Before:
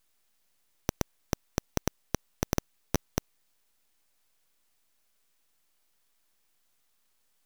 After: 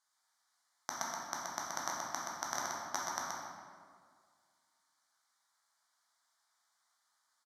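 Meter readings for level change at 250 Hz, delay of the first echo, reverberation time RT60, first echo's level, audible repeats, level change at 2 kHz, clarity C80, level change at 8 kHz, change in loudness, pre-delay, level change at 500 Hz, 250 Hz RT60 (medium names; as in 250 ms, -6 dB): -16.5 dB, 126 ms, 1.9 s, -4.5 dB, 1, +1.5 dB, -1.0 dB, 0.0 dB, -3.5 dB, 10 ms, -9.5 dB, 2.0 s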